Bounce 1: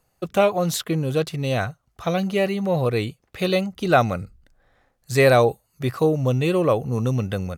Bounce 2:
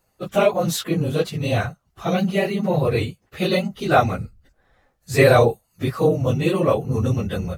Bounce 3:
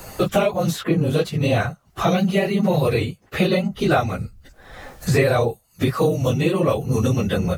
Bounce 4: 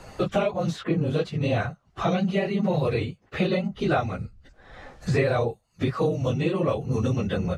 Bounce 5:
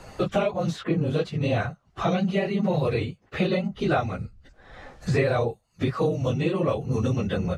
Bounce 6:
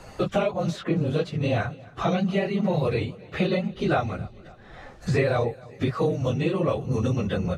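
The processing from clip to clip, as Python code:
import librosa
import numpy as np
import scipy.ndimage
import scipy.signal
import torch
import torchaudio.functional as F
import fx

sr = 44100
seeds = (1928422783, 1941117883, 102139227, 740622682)

y1 = fx.phase_scramble(x, sr, seeds[0], window_ms=50)
y1 = y1 * 10.0 ** (1.0 / 20.0)
y2 = fx.band_squash(y1, sr, depth_pct=100)
y3 = fx.air_absorb(y2, sr, metres=89.0)
y3 = y3 * 10.0 ** (-5.0 / 20.0)
y4 = y3
y5 = fx.echo_feedback(y4, sr, ms=272, feedback_pct=59, wet_db=-22.0)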